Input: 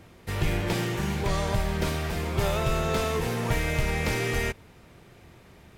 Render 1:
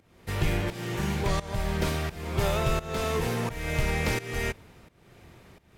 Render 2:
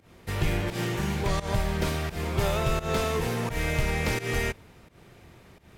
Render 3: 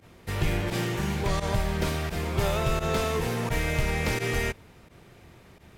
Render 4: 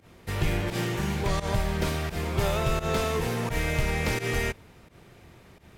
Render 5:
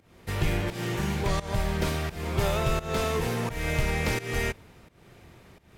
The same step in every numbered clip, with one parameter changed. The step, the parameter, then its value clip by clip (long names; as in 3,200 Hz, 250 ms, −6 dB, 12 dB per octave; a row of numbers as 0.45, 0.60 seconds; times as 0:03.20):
fake sidechain pumping, release: 440, 164, 61, 104, 283 milliseconds